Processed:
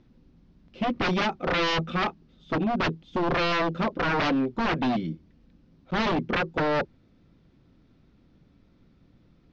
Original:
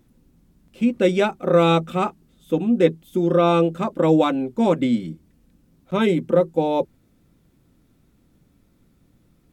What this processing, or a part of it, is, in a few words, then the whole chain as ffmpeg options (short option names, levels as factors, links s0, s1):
synthesiser wavefolder: -af "aeval=exprs='0.106*(abs(mod(val(0)/0.106+3,4)-2)-1)':c=same,lowpass=f=5500:w=0.5412,lowpass=f=5500:w=1.3066,lowpass=f=6100:w=0.5412,lowpass=f=6100:w=1.3066"